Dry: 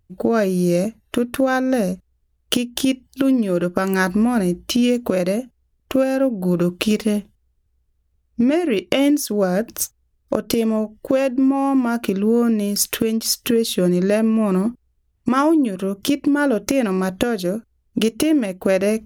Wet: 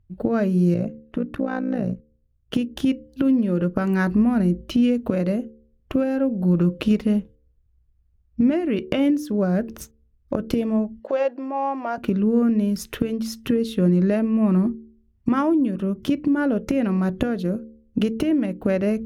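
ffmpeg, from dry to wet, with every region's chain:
-filter_complex "[0:a]asettb=1/sr,asplit=3[s0][s1][s2];[s0]atrim=end=0.744[s3];[s1]atrim=start=0.74:end=2.54,asetpts=PTS-STARTPTS,afade=t=in:d=0.004:c=qsin,afade=t=out:st=1.796:d=0.004:c=qsin,lowpass=f=3900:p=1,tremolo=f=58:d=0.788[s4];[s2]atrim=start=2.536[s5];[s3][s4]acrossfade=d=0.004:c1=hsin:c2=qsin[s6];[s6][s5]acrossfade=d=0.004:c1=qsin:c2=hsin,asettb=1/sr,asplit=3[s7][s8][s9];[s7]atrim=end=11.004[s10];[s8]atrim=start=11:end=11.98,asetpts=PTS-STARTPTS,afade=t=in:d=0.004:c=qsin,afade=t=out:st=0.976:d=0.004:c=qsin,highpass=f=640:t=q:w=2.2,highshelf=f=8000:t=q:w=1.5:g=-11.5[s11];[s9]atrim=start=11.976[s12];[s10][s11]acrossfade=d=0.004:c1=hsin:c2=qsin[s13];[s13][s12]acrossfade=d=0.004:c1=qsin:c2=hsin,bass=f=250:g=10,treble=f=4000:g=-12,bandreject=f=74.78:t=h:w=4,bandreject=f=149.56:t=h:w=4,bandreject=f=224.34:t=h:w=4,bandreject=f=299.12:t=h:w=4,bandreject=f=373.9:t=h:w=4,bandreject=f=448.68:t=h:w=4,bandreject=f=523.46:t=h:w=4,volume=0.501"

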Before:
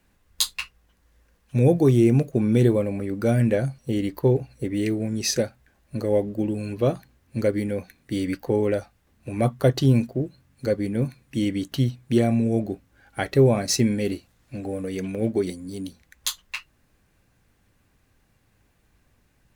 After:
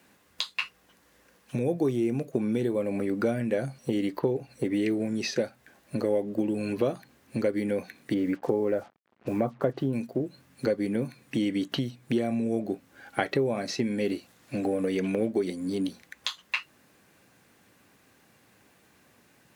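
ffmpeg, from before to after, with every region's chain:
-filter_complex "[0:a]asettb=1/sr,asplit=3[s0][s1][s2];[s0]atrim=end=8.144[s3];[s1]atrim=start=8.14:end=9.93,asetpts=PTS-STARTPTS,afade=t=in:d=0.004:c=qsin,afade=t=out:st=1.786:d=0.004:c=qsin,lowpass=1600,acrusher=bits=8:mix=0:aa=0.5[s4];[s2]atrim=start=9.926[s5];[s3][s4]acrossfade=d=0.004:c1=hsin:c2=qsin[s6];[s6][s5]acrossfade=d=0.004:c1=qsin:c2=hsin,acompressor=threshold=0.0316:ratio=6,highpass=200,acrossover=split=4300[s7][s8];[s8]acompressor=threshold=0.00126:ratio=4:attack=1:release=60[s9];[s7][s9]amix=inputs=2:normalize=0,volume=2.37"

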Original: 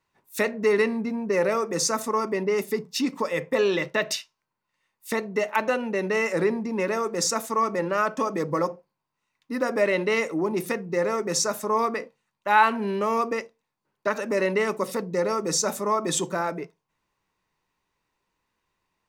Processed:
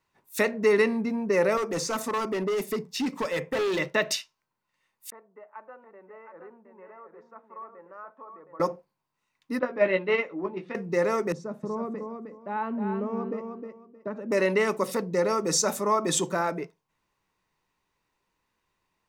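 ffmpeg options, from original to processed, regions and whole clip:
-filter_complex "[0:a]asettb=1/sr,asplit=3[s0][s1][s2];[s0]atrim=end=1.574[s3];[s1]atrim=start=1.57:end=3.79,asetpts=PTS-STARTPTS,afade=t=in:d=0.004:c=qsin,afade=t=out:st=2.216:d=0.004:c=qsin,acrossover=split=3500[s4][s5];[s5]acompressor=threshold=0.0251:ratio=4:attack=1:release=60[s6];[s4][s6]amix=inputs=2:normalize=0,volume=15.8,asoftclip=hard,volume=0.0631[s7];[s2]atrim=start=3.786[s8];[s3][s7]acrossfade=d=0.004:c1=hsin:c2=qsin[s9];[s9][s8]acrossfade=d=0.004:c1=qsin:c2=hsin,asettb=1/sr,asplit=3[s10][s11][s12];[s10]atrim=end=5.104[s13];[s11]atrim=start=5.1:end=8.6,asetpts=PTS-STARTPTS,afade=t=in:d=0.004:c=qsin,afade=t=out:st=3.496:d=0.004:c=qsin,lowpass=f=1200:w=0.5412,lowpass=f=1200:w=1.3066,aderivative,aecho=1:1:717:0.447,atrim=end_sample=154350[s14];[s12]atrim=start=8.596[s15];[s13][s14]acrossfade=d=0.004:c1=hsin:c2=qsin[s16];[s16][s15]acrossfade=d=0.004:c1=qsin:c2=hsin,asettb=1/sr,asplit=3[s17][s18][s19];[s17]atrim=end=9.594[s20];[s18]atrim=start=9.59:end=10.75,asetpts=PTS-STARTPTS,afade=t=in:d=0.004:c=qsin,afade=t=out:st=1.156:d=0.004:c=qsin,agate=range=0.316:threshold=0.0708:ratio=16:release=100:detection=peak,lowpass=f=3600:w=0.5412,lowpass=f=3600:w=1.3066,asplit=2[s21][s22];[s22]adelay=16,volume=0.473[s23];[s21][s23]amix=inputs=2:normalize=0,atrim=end_sample=51156[s24];[s19]atrim=start=10.746[s25];[s20][s24]acrossfade=d=0.004:c1=hsin:c2=qsin[s26];[s26][s25]acrossfade=d=0.004:c1=qsin:c2=hsin,asettb=1/sr,asplit=3[s27][s28][s29];[s27]atrim=end=11.324[s30];[s28]atrim=start=11.32:end=14.32,asetpts=PTS-STARTPTS,afade=t=in:d=0.004:c=qsin,afade=t=out:st=2.996:d=0.004:c=qsin,bandpass=f=180:t=q:w=0.9,aecho=1:1:311|622|933:0.501|0.105|0.0221,atrim=end_sample=132300[s31];[s29]atrim=start=14.316[s32];[s30][s31]acrossfade=d=0.004:c1=hsin:c2=qsin[s33];[s33][s32]acrossfade=d=0.004:c1=qsin:c2=hsin"

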